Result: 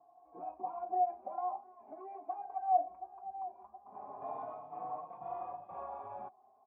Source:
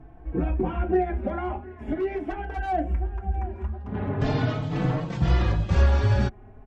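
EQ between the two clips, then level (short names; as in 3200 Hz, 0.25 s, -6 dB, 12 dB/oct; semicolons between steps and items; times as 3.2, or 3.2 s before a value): vocal tract filter a; HPF 290 Hz 12 dB/oct; 0.0 dB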